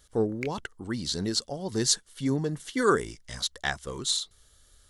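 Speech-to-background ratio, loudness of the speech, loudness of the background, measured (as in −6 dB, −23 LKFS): 13.5 dB, −29.0 LKFS, −42.5 LKFS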